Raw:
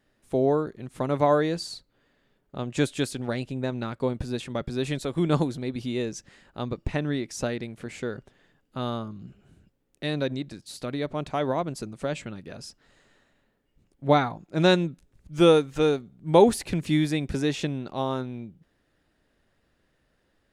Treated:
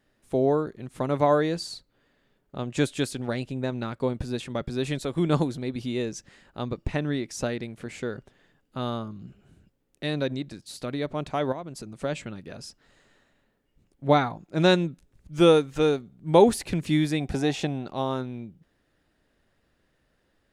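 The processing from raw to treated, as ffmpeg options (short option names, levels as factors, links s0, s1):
-filter_complex "[0:a]asettb=1/sr,asplit=3[s0][s1][s2];[s0]atrim=end=11.524[s3];[s1]atrim=start=11.52:end=11.98,asetpts=PTS-STARTPTS,afade=t=in:d=0.004:c=qsin,afade=t=out:st=0.456:d=0.004:c=qsin,acompressor=threshold=0.0158:ratio=2.5:attack=3.2:release=140:knee=1:detection=peak[s4];[s2]atrim=start=11.976[s5];[s3][s4]acrossfade=d=0.004:c1=hsin:c2=qsin[s6];[s6][s5]acrossfade=d=0.004:c1=qsin:c2=hsin,asettb=1/sr,asplit=3[s7][s8][s9];[s7]atrim=end=17.204[s10];[s8]atrim=start=17.2:end=17.86,asetpts=PTS-STARTPTS,afade=t=in:d=0.004:c=qsin,afade=t=out:st=0.656:d=0.004:c=qsin,equalizer=f=750:t=o:w=0.34:g=14[s11];[s9]atrim=start=17.856[s12];[s10][s11]acrossfade=d=0.004:c1=hsin:c2=qsin[s13];[s13][s12]acrossfade=d=0.004:c1=qsin:c2=hsin"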